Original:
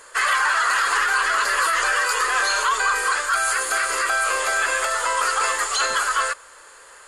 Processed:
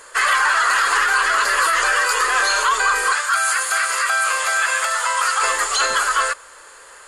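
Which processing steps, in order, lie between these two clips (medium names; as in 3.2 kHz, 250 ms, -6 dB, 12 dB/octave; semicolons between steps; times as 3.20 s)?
3.13–5.43 s: high-pass 780 Hz 12 dB/octave; trim +3 dB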